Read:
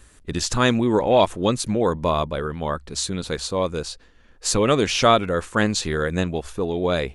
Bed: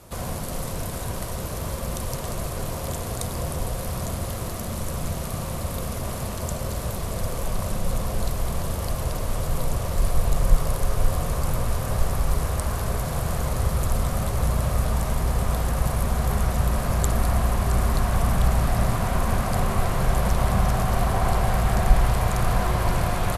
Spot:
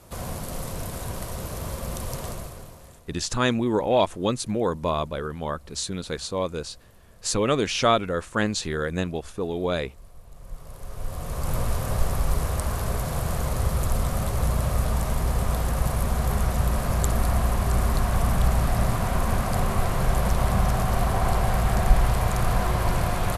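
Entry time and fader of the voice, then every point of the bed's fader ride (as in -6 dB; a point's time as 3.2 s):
2.80 s, -4.0 dB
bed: 2.27 s -2.5 dB
3.11 s -26 dB
10.26 s -26 dB
11.56 s -1 dB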